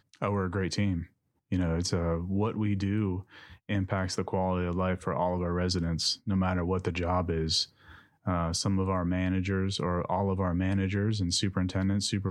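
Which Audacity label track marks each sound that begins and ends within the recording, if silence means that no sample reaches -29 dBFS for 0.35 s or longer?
1.520000	3.190000	sound
3.690000	7.630000	sound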